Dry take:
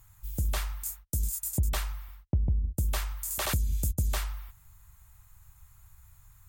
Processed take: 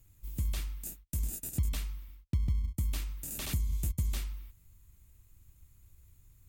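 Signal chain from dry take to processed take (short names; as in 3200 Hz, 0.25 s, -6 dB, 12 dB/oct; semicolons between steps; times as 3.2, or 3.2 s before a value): in parallel at -6.5 dB: sample-and-hold 41×; on the sum: band shelf 820 Hz -9 dB 2.4 oct; gain -6.5 dB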